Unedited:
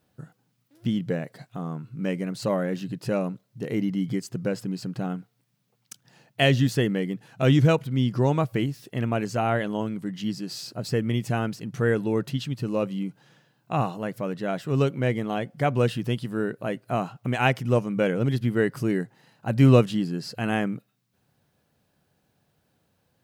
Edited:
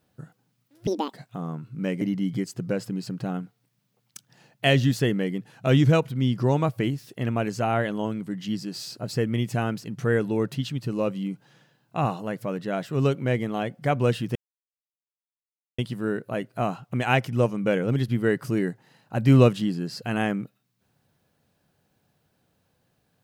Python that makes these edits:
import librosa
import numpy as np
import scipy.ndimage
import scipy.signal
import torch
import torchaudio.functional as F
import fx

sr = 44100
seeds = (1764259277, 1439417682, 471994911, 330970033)

y = fx.edit(x, sr, fx.speed_span(start_s=0.87, length_s=0.47, speed=1.78),
    fx.cut(start_s=2.22, length_s=1.55),
    fx.insert_silence(at_s=16.11, length_s=1.43), tone=tone)